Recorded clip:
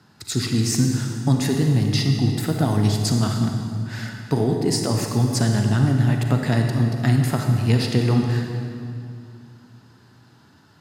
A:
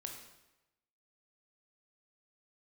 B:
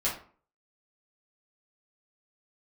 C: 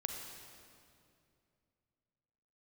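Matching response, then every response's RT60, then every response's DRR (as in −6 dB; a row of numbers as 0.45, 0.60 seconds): C; 1.0, 0.45, 2.5 seconds; 2.0, −8.5, 2.5 decibels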